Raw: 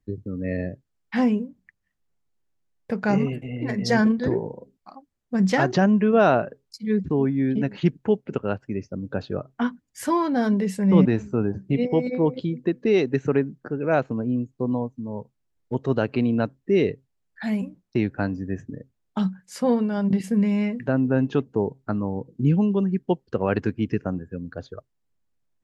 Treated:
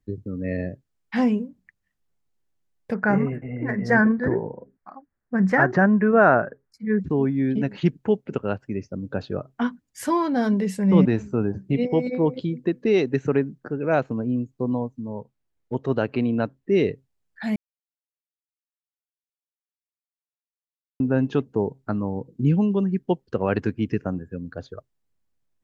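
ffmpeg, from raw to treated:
-filter_complex "[0:a]asettb=1/sr,asplit=3[a][b][c];[a]atrim=end=2.944[d];[b]atrim=start=2.94:end=7.01,asetpts=PTS-STARTPTS,afade=t=in:d=0.004:c=qsin,afade=t=out:st=4.066:d=0.004:c=qsin,highshelf=f=2.4k:t=q:w=3:g=-12[e];[c]atrim=start=7.006[f];[d][e]acrossfade=d=0.004:c1=hsin:c2=qsin[g];[g][f]acrossfade=d=0.004:c1=qsin:c2=hsin,asettb=1/sr,asplit=3[h][i][j];[h]atrim=end=15.134[k];[i]atrim=start=15.13:end=16.72,asetpts=PTS-STARTPTS,afade=t=in:d=0.004:c=qsin,afade=t=out:st=1.586:d=0.004:c=qsin,bass=f=250:g=-2,treble=f=4k:g=-5[l];[j]atrim=start=16.716[m];[k][l]acrossfade=d=0.004:c1=hsin:c2=qsin[n];[n][m]acrossfade=d=0.004:c1=qsin:c2=hsin,asplit=3[o][p][q];[o]atrim=end=17.56,asetpts=PTS-STARTPTS,afade=t=out:st=17.556:d=0.004:c=hsin[r];[p]atrim=start=17.56:end=21,asetpts=PTS-STARTPTS,volume=0[s];[q]atrim=start=21,asetpts=PTS-STARTPTS,afade=t=in:d=0.004:c=hsin[t];[r][s][t]concat=n=3:v=0:a=1"

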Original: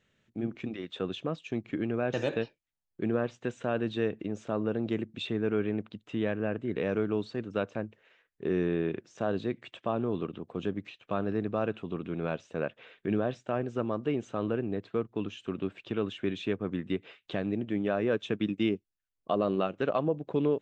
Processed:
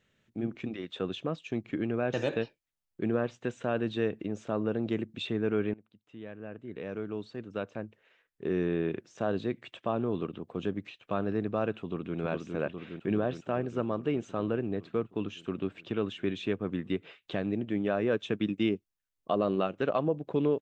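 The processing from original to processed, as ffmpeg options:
-filter_complex "[0:a]asplit=2[a][b];[b]afade=t=in:st=11.77:d=0.01,afade=t=out:st=12.17:d=0.01,aecho=0:1:410|820|1230|1640|2050|2460|2870|3280|3690|4100|4510|4920:0.630957|0.473218|0.354914|0.266185|0.199639|0.149729|0.112297|0.0842226|0.063167|0.0473752|0.0355314|0.0266486[c];[a][c]amix=inputs=2:normalize=0,asplit=2[d][e];[d]atrim=end=5.74,asetpts=PTS-STARTPTS,afade=t=out:st=5.736:d=0.004:c=hsin:silence=0.0630957[f];[e]atrim=start=5.74,asetpts=PTS-STARTPTS,afade=t=in:d=3.2:silence=0.0630957[g];[f][g]concat=n=2:v=0:a=1"

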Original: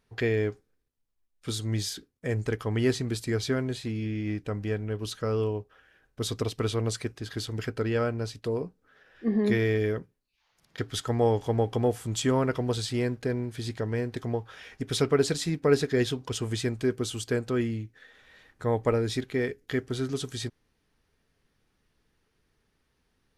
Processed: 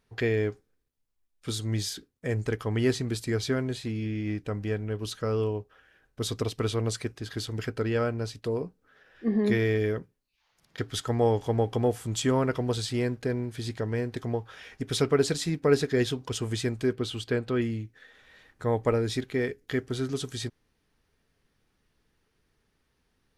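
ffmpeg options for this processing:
-filter_complex "[0:a]asettb=1/sr,asplit=3[a][b][c];[a]atrim=end=16.934[d];[b]atrim=start=16.93:end=17.62,asetpts=PTS-STARTPTS,afade=t=in:d=0.004:c=qsin,afade=t=out:st=0.686:d=0.004:c=qsin,highshelf=f=5k:t=q:w=1.5:g=-7.5[e];[c]atrim=start=17.616[f];[d][e]acrossfade=d=0.004:c1=hsin:c2=qsin[g];[g][f]acrossfade=d=0.004:c1=qsin:c2=hsin"

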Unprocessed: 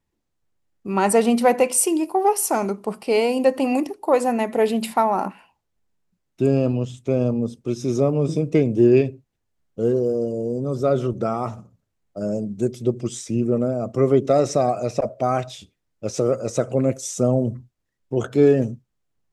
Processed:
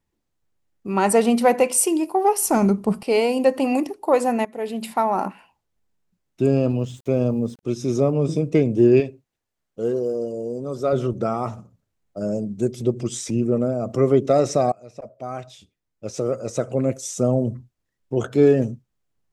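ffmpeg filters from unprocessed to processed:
-filter_complex "[0:a]asettb=1/sr,asplit=3[a][b][c];[a]atrim=end=2.424[d];[b]atrim=start=2.42:end=3.03,asetpts=PTS-STARTPTS,afade=t=in:d=0.004:c=qsin,afade=t=out:st=0.606:d=0.004:c=qsin,bass=f=250:g=15,treble=f=4k:g=1[e];[c]atrim=start=3.026[f];[d][e]acrossfade=d=0.004:c1=hsin:c2=qsin[g];[g][f]acrossfade=d=0.004:c1=qsin:c2=hsin,asettb=1/sr,asplit=3[h][i][j];[h]atrim=end=6.704[k];[i]atrim=start=6.7:end=7.63,asetpts=PTS-STARTPTS,afade=t=in:d=0.004:c=qsin,afade=t=out:st=0.926:d=0.004:c=qsin,aeval=exprs='val(0)*gte(abs(val(0)),0.00376)':c=same[l];[j]atrim=start=7.626[m];[k][l]acrossfade=d=0.004:c1=hsin:c2=qsin[n];[n][m]acrossfade=d=0.004:c1=qsin:c2=hsin,asettb=1/sr,asplit=3[o][p][q];[o]atrim=end=9.004[r];[p]atrim=start=9:end=10.93,asetpts=PTS-STARTPTS,afade=t=in:d=0.004:c=qsin,afade=t=out:st=1.926:d=0.004:c=qsin,lowshelf=f=240:g=-10.5[s];[q]atrim=start=10.926[t];[r][s]acrossfade=d=0.004:c1=hsin:c2=qsin[u];[u][t]acrossfade=d=0.004:c1=qsin:c2=hsin,asplit=3[v][w][x];[v]afade=t=out:st=12.77:d=0.02[y];[w]acompressor=mode=upward:threshold=-23dB:ratio=2.5:attack=3.2:release=140:knee=2.83:detection=peak,afade=t=in:st=12.77:d=0.02,afade=t=out:st=14.09:d=0.02[z];[x]afade=t=in:st=14.09:d=0.02[aa];[y][z][aa]amix=inputs=3:normalize=0,asplit=3[ab][ac][ad];[ab]atrim=end=4.45,asetpts=PTS-STARTPTS,afade=t=out:st=4.446:d=0.004:c=hsin:silence=0.149624[ae];[ac]atrim=start=4.45:end=14.72,asetpts=PTS-STARTPTS,afade=t=in:d=0.74:silence=0.149624,afade=t=out:st=10.266:d=0.004:c=hsin:silence=0.0668344[af];[ad]atrim=start=14.72,asetpts=PTS-STARTPTS,afade=t=in:d=3.46:c=qsin:silence=0.0668344[ag];[ae][af][ag]concat=n=3:v=0:a=1"

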